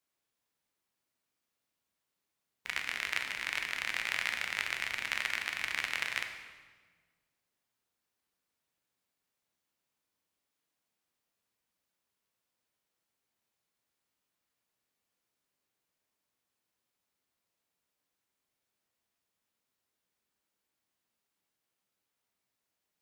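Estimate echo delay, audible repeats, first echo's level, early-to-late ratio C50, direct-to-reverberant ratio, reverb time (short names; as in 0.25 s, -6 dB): none, none, none, 7.0 dB, 4.5 dB, 1.5 s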